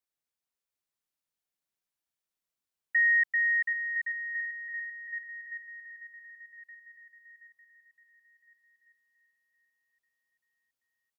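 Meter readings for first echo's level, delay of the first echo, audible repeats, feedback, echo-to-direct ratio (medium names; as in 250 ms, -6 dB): -5.5 dB, 726 ms, 6, 51%, -4.0 dB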